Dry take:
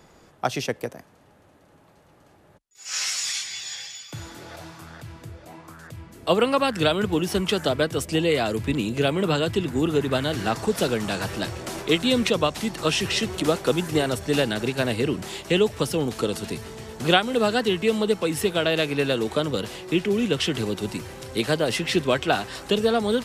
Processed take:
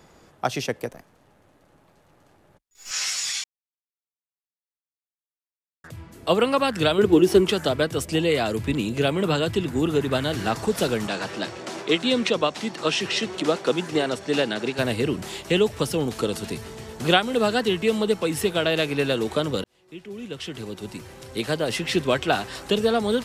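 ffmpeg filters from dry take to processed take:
ffmpeg -i in.wav -filter_complex "[0:a]asettb=1/sr,asplit=3[link_01][link_02][link_03];[link_01]atrim=end=0.894[link_04];[link_02]atrim=start=0.89:end=2.91,asetpts=PTS-STARTPTS,afade=type=in:duration=0.004:curve=qsin,afade=type=out:start_time=2.016:duration=0.004:curve=qsin,aeval=exprs='if(lt(val(0),0),0.447*val(0),val(0))':channel_layout=same[link_05];[link_03]atrim=start=2.906[link_06];[link_04][link_05]acrossfade=duration=0.004:curve1=hsin:curve2=qsin[link_07];[link_07][link_06]acrossfade=duration=0.004:curve1=qsin:curve2=hsin,asettb=1/sr,asplit=3[link_08][link_09][link_10];[link_08]atrim=end=6.984[link_11];[link_09]atrim=start=6.98:end=7.51,asetpts=PTS-STARTPTS,afade=type=in:duration=0.004:curve=qsin,afade=type=out:start_time=0.526:duration=0.004:curve=qsin,equalizer=frequency=370:width=2.4:gain=12.5[link_12];[link_10]atrim=start=7.506[link_13];[link_11][link_12]acrossfade=duration=0.004:curve1=hsin:curve2=qsin[link_14];[link_14][link_13]acrossfade=duration=0.004:curve1=qsin:curve2=hsin,asettb=1/sr,asplit=3[link_15][link_16][link_17];[link_15]atrim=end=11.074[link_18];[link_16]atrim=start=11.07:end=14.79,asetpts=PTS-STARTPTS,afade=type=in:duration=0.004:curve=qsin,afade=type=out:start_time=3.716:duration=0.004:curve=qsin,highpass=200,lowpass=6800[link_19];[link_17]atrim=start=14.786[link_20];[link_18][link_19]acrossfade=duration=0.004:curve1=hsin:curve2=qsin[link_21];[link_21][link_20]acrossfade=duration=0.004:curve1=qsin:curve2=hsin,asplit=4[link_22][link_23][link_24][link_25];[link_22]atrim=end=3.44,asetpts=PTS-STARTPTS,afade=type=out:start_time=3.436:duration=0.004:curve=hsin[link_26];[link_23]atrim=start=3.44:end=5.84,asetpts=PTS-STARTPTS,volume=0[link_27];[link_24]atrim=start=5.84:end=19.64,asetpts=PTS-STARTPTS,afade=type=in:duration=0.004:curve=hsin,afade=type=out:start_time=13.796:duration=0.004:curve=hsin[link_28];[link_25]atrim=start=19.64,asetpts=PTS-STARTPTS,afade=type=in:duration=2.48[link_29];[link_26][link_27][link_28][link_29]concat=n=4:v=0:a=1" out.wav

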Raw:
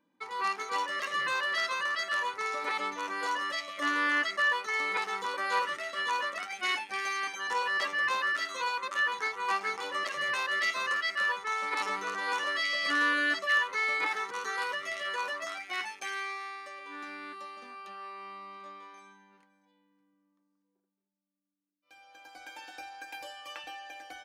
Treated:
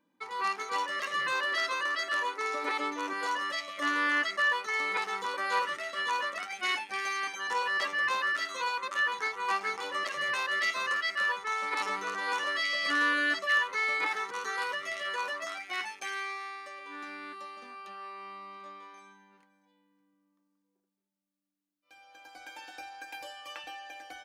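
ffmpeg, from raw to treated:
ffmpeg -i in.wav -filter_complex "[0:a]asettb=1/sr,asplit=3[link_01][link_02][link_03];[link_01]atrim=end=1.324[link_04];[link_02]atrim=start=1.32:end=3.13,asetpts=PTS-STARTPTS,afade=type=in:duration=0.004:curve=qsin,afade=type=out:start_time=1.806:duration=0.004:curve=qsin,lowshelf=frequency=200:width_type=q:width=3:gain=-11.5[link_05];[link_03]atrim=start=3.126[link_06];[link_04][link_05]acrossfade=duration=0.004:curve1=hsin:curve2=qsin[link_07];[link_07][link_06]acrossfade=duration=0.004:curve1=qsin:curve2=hsin" out.wav

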